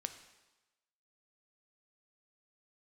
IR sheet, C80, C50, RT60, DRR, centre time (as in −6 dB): 12.5 dB, 10.5 dB, 1.1 s, 8.0 dB, 12 ms